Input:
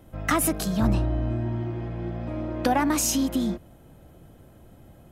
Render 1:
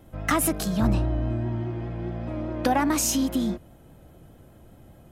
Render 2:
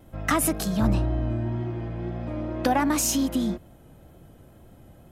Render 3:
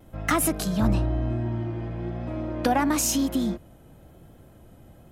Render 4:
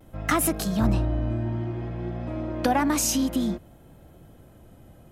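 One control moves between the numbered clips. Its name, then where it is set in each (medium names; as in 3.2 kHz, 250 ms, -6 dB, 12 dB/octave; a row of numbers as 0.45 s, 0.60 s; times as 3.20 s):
vibrato, rate: 4.9 Hz, 2 Hz, 1 Hz, 0.57 Hz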